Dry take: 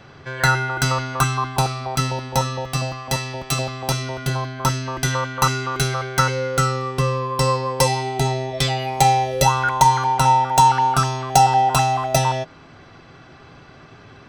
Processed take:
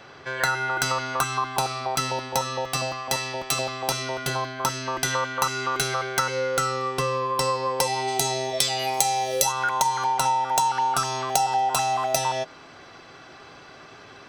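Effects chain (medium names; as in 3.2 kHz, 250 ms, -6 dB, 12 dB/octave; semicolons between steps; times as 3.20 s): tone controls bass -12 dB, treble +1 dB, from 8.07 s treble +13 dB, from 9.51 s treble +5 dB; compression 4:1, threshold -22 dBFS, peak gain reduction 13 dB; trim +1 dB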